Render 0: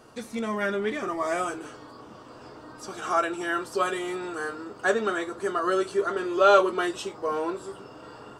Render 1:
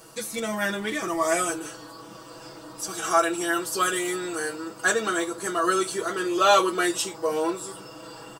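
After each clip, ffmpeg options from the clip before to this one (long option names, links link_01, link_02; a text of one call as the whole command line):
ffmpeg -i in.wav -af "aemphasis=mode=production:type=75fm,aecho=1:1:6.1:0.81" out.wav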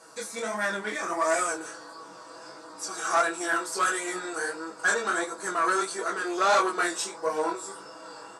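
ffmpeg -i in.wav -af "flanger=delay=18.5:depth=6.9:speed=1.5,aeval=exprs='(tanh(11.2*val(0)+0.5)-tanh(0.5))/11.2':channel_layout=same,highpass=280,equalizer=frequency=340:width_type=q:width=4:gain=-4,equalizer=frequency=970:width_type=q:width=4:gain=3,equalizer=frequency=1500:width_type=q:width=4:gain=4,equalizer=frequency=3000:width_type=q:width=4:gain=-9,lowpass=frequency=9700:width=0.5412,lowpass=frequency=9700:width=1.3066,volume=3.5dB" out.wav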